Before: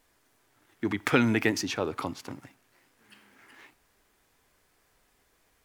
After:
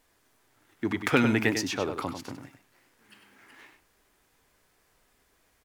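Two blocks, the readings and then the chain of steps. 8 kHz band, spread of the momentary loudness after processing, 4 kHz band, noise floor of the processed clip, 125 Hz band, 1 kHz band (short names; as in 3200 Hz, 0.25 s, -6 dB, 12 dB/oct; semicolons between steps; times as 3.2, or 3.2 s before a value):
+0.5 dB, 18 LU, +0.5 dB, -69 dBFS, +0.5 dB, +0.5 dB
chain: echo 98 ms -8 dB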